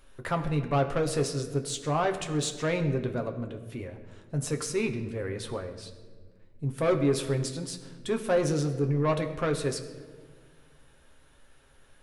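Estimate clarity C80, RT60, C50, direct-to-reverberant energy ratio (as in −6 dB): 12.0 dB, 1.6 s, 10.5 dB, 4.5 dB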